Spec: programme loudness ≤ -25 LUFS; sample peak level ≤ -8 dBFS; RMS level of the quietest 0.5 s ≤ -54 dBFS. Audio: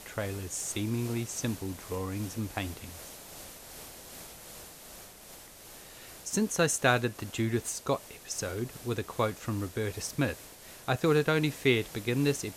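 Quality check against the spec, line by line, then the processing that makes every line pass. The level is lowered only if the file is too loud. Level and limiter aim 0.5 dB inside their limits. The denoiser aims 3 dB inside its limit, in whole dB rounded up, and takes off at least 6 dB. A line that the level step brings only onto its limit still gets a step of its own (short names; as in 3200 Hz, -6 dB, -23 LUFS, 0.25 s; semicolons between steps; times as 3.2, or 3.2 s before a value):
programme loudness -31.0 LUFS: OK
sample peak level -9.5 dBFS: OK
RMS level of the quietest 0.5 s -50 dBFS: fail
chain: denoiser 7 dB, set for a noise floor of -50 dBFS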